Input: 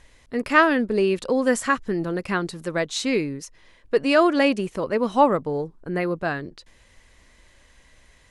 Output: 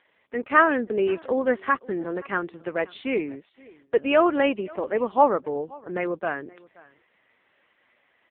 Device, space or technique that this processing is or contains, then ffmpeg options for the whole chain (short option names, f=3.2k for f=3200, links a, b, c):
satellite phone: -af "highpass=310,lowpass=3.4k,aecho=1:1:525:0.0668" -ar 8000 -c:a libopencore_amrnb -b:a 5150